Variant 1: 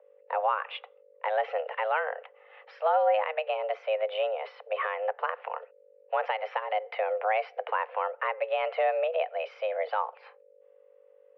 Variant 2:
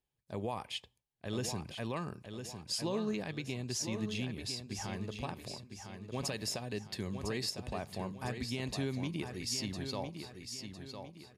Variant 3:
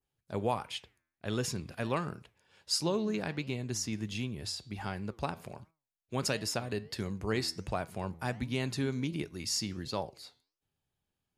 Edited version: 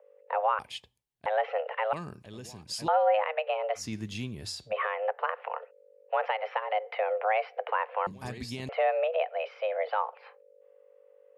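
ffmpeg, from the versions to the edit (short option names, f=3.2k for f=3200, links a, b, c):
-filter_complex "[1:a]asplit=3[a][b][c];[0:a]asplit=5[d][e][f][g][h];[d]atrim=end=0.592[i];[a]atrim=start=0.588:end=1.262[j];[e]atrim=start=1.258:end=1.932[k];[b]atrim=start=1.928:end=2.882[l];[f]atrim=start=2.878:end=3.85[m];[2:a]atrim=start=3.75:end=4.74[n];[g]atrim=start=4.64:end=8.072[o];[c]atrim=start=8.068:end=8.692[p];[h]atrim=start=8.688[q];[i][j]acrossfade=d=0.004:c1=hsin:c2=hsin[r];[r][k]acrossfade=d=0.004:c1=hsin:c2=hsin[s];[s][l]acrossfade=d=0.004:c1=hsin:c2=hsin[t];[t][m]acrossfade=d=0.004:c1=hsin:c2=hsin[u];[u][n]acrossfade=d=0.1:c1=tri:c2=tri[v];[v][o]acrossfade=d=0.1:c1=tri:c2=tri[w];[w][p]acrossfade=d=0.004:c1=hsin:c2=hsin[x];[x][q]acrossfade=d=0.004:c1=hsin:c2=hsin"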